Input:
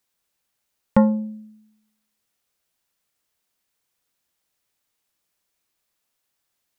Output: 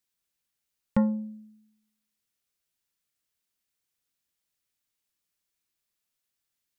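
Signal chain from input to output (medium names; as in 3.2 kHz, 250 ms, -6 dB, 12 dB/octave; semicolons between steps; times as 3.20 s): peaking EQ 740 Hz -6.5 dB 1.9 oct; trim -6 dB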